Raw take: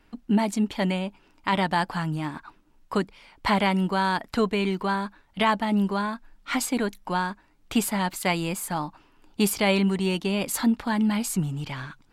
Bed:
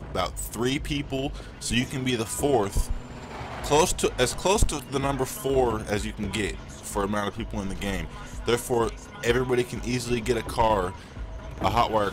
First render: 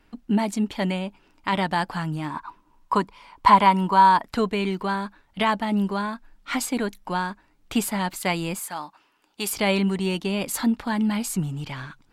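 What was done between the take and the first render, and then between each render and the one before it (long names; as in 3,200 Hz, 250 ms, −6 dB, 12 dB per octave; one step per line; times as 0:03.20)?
0:02.30–0:04.23: parametric band 1,000 Hz +15 dB 0.36 octaves
0:08.59–0:09.53: high-pass filter 870 Hz 6 dB per octave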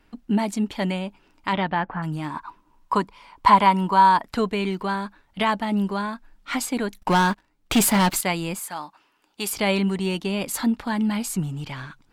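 0:01.52–0:02.02: low-pass filter 4,500 Hz → 1,800 Hz 24 dB per octave
0:06.99–0:08.21: leveller curve on the samples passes 3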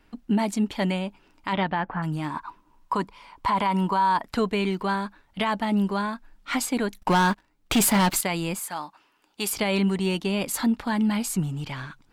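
brickwall limiter −15 dBFS, peak gain reduction 11.5 dB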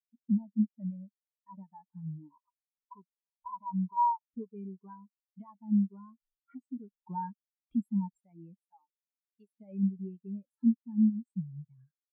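downward compressor 3 to 1, threshold −32 dBFS, peak gain reduction 10.5 dB
every bin expanded away from the loudest bin 4 to 1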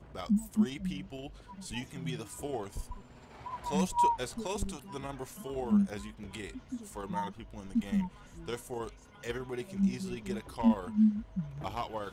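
mix in bed −14.5 dB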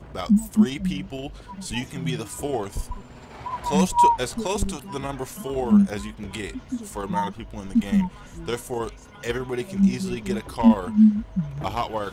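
level +10 dB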